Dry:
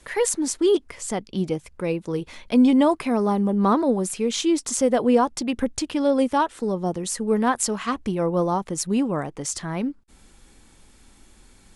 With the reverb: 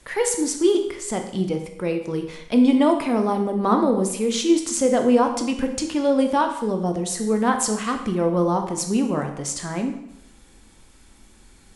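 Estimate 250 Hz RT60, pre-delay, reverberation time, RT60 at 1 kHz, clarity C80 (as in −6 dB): 0.80 s, 7 ms, 0.85 s, 0.80 s, 10.5 dB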